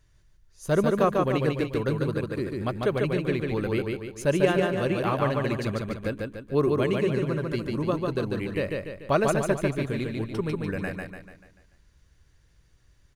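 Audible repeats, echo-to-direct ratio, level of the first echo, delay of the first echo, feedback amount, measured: 5, -2.0 dB, -3.0 dB, 0.146 s, 47%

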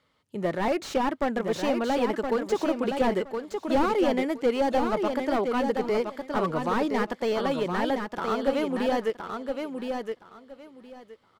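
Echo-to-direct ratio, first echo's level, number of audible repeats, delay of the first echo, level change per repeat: -5.5 dB, -5.5 dB, 3, 1.018 s, -14.5 dB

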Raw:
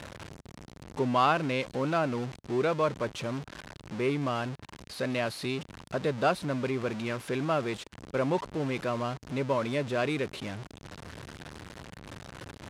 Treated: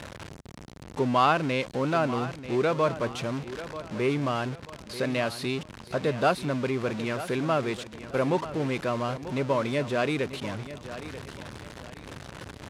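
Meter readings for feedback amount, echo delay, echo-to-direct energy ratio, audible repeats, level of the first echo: 34%, 0.938 s, -13.0 dB, 3, -13.5 dB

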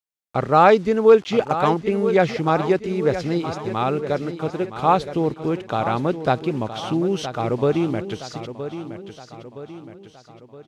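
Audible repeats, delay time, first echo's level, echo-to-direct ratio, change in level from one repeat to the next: 4, 0.968 s, -11.0 dB, -10.0 dB, -6.0 dB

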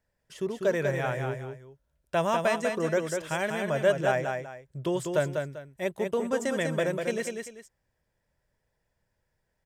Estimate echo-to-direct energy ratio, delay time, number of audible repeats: -4.5 dB, 0.196 s, 2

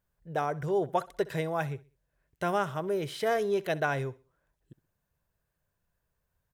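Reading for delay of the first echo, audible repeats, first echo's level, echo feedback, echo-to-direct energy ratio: 64 ms, 2, -20.5 dB, 36%, -20.0 dB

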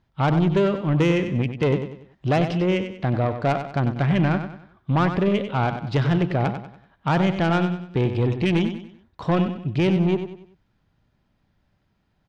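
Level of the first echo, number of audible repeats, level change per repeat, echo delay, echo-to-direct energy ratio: -9.0 dB, 4, -8.5 dB, 95 ms, -8.5 dB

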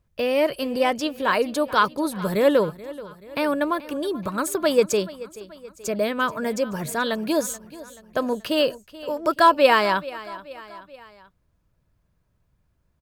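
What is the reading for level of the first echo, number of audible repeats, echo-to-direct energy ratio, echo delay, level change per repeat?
-18.0 dB, 3, -16.5 dB, 0.431 s, -5.5 dB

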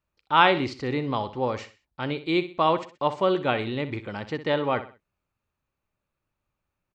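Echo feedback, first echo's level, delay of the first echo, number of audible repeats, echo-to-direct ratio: 34%, -13.0 dB, 63 ms, 3, -12.5 dB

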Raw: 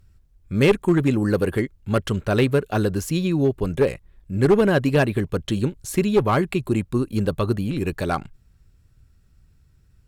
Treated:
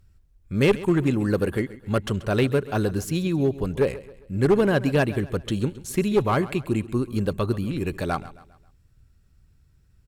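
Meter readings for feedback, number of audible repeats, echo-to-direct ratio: 42%, 3, -16.0 dB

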